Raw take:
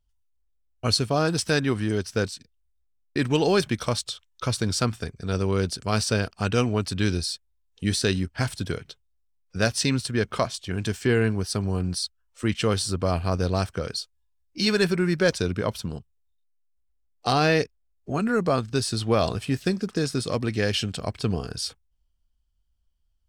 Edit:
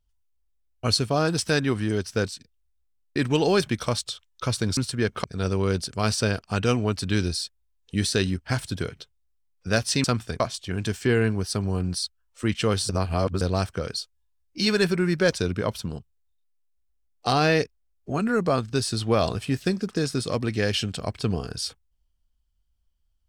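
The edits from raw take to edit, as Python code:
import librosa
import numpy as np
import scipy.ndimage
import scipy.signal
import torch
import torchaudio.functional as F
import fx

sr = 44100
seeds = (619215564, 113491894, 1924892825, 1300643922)

y = fx.edit(x, sr, fx.swap(start_s=4.77, length_s=0.36, other_s=9.93, other_length_s=0.47),
    fx.reverse_span(start_s=12.89, length_s=0.52), tone=tone)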